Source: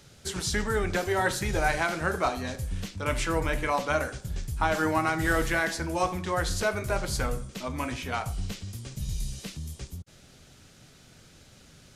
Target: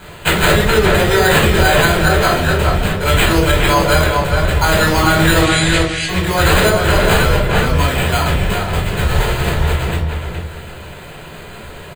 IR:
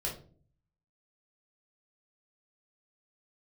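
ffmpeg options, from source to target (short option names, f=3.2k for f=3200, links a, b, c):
-filter_complex "[0:a]crystalizer=i=4.5:c=0,acrusher=samples=8:mix=1:aa=0.000001,asettb=1/sr,asplit=3[a][b][c];[a]atrim=end=5.414[d];[b]atrim=start=5.41:end=6.09,asetpts=PTS-STARTPTS,afade=t=in:d=0.004:c=qsin,afade=t=out:st=0.676:d=0.004:c=qsin,asuperpass=centerf=4400:order=12:qfactor=0.57[e];[c]atrim=start=6.086[f];[d][e]acrossfade=d=0.004:c1=hsin:c2=qsin[g];[g][f]acrossfade=d=0.004:c1=qsin:c2=hsin,asplit=2[h][i];[i]adelay=417,lowpass=f=2.8k:p=1,volume=-4dB,asplit=2[j][k];[k]adelay=417,lowpass=f=2.8k:p=1,volume=0.25,asplit=2[l][m];[m]adelay=417,lowpass=f=2.8k:p=1,volume=0.25[n];[h][j][l][n]amix=inputs=4:normalize=0[o];[1:a]atrim=start_sample=2205[p];[o][p]afir=irnorm=-1:irlink=0,alimiter=level_in=8.5dB:limit=-1dB:release=50:level=0:latency=1,volume=-1dB"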